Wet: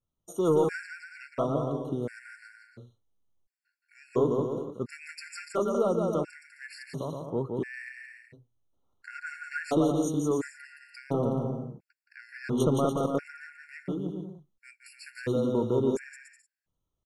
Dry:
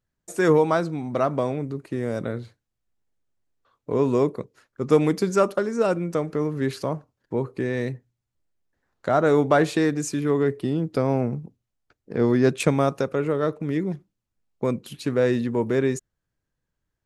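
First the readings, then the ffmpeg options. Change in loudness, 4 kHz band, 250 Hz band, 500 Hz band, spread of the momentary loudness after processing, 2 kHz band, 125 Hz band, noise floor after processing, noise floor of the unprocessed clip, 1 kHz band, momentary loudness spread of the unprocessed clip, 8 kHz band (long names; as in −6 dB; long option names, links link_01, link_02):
−6.0 dB, −8.0 dB, −6.5 dB, −7.0 dB, 20 LU, −7.0 dB, −7.0 dB, −84 dBFS, −82 dBFS, −8.0 dB, 12 LU, −6.5 dB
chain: -af "asoftclip=type=tanh:threshold=-10dB,adynamicequalizer=threshold=0.00447:dfrequency=3700:dqfactor=1.3:tfrequency=3700:tqfactor=1.3:attack=5:release=100:ratio=0.375:range=2.5:mode=cutabove:tftype=bell,aecho=1:1:170|289|372.3|430.6|471.4:0.631|0.398|0.251|0.158|0.1,afftfilt=real='re*gt(sin(2*PI*0.72*pts/sr)*(1-2*mod(floor(b*sr/1024/1400),2)),0)':imag='im*gt(sin(2*PI*0.72*pts/sr)*(1-2*mod(floor(b*sr/1024/1400),2)),0)':win_size=1024:overlap=0.75,volume=-4.5dB"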